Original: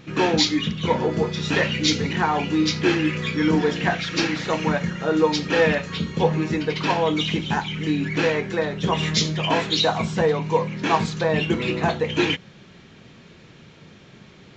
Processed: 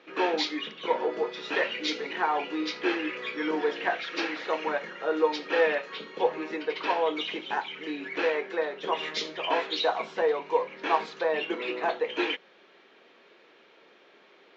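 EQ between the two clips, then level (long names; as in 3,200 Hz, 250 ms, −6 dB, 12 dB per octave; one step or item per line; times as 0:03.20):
high-pass filter 370 Hz 24 dB per octave
high-frequency loss of the air 200 metres
−3.5 dB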